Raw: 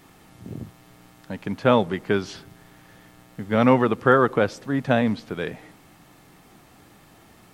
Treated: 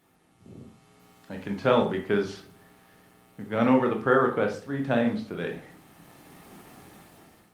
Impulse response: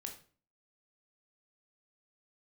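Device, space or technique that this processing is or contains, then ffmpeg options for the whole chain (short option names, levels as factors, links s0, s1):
far-field microphone of a smart speaker: -filter_complex "[1:a]atrim=start_sample=2205[s0];[0:a][s0]afir=irnorm=-1:irlink=0,highpass=f=110:p=1,dynaudnorm=f=370:g=5:m=6.31,volume=0.422" -ar 48000 -c:a libopus -b:a 32k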